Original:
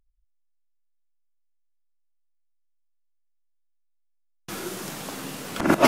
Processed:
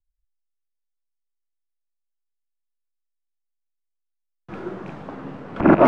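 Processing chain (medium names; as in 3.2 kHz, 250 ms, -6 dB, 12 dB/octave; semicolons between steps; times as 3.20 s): rattle on loud lows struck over -35 dBFS, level -21 dBFS; low-pass 1.3 kHz 12 dB/octave; loudness maximiser +13 dB; three bands expanded up and down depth 70%; trim -8.5 dB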